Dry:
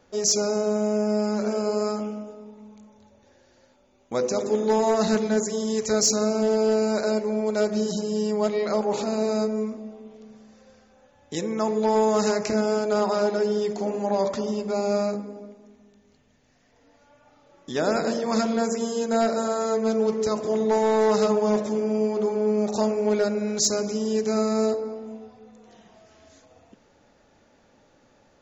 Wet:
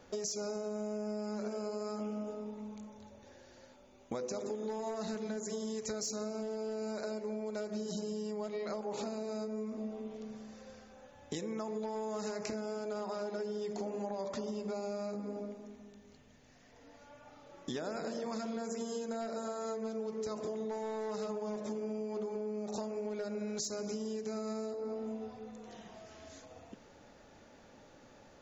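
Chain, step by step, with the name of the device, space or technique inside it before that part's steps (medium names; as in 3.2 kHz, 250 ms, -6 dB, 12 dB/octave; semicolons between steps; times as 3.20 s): serial compression, peaks first (compression, threshold -31 dBFS, peak gain reduction 13.5 dB; compression 3:1, threshold -38 dBFS, peak gain reduction 7.5 dB); trim +1 dB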